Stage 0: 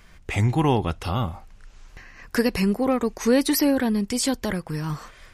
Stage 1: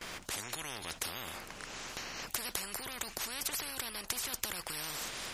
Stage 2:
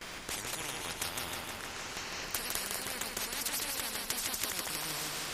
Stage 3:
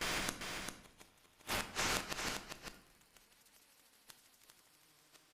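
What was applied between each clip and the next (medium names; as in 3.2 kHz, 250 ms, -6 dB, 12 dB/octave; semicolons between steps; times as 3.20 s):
gate with hold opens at -45 dBFS; in parallel at +2 dB: compressor with a negative ratio -29 dBFS, ratio -1; on the sum: spectrum-flattening compressor 10:1; trim -8.5 dB
modulated delay 157 ms, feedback 68%, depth 52 cents, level -3 dB
inverted gate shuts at -28 dBFS, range -38 dB; delay 397 ms -6 dB; reverberation RT60 0.85 s, pre-delay 7 ms, DRR 8 dB; trim +5.5 dB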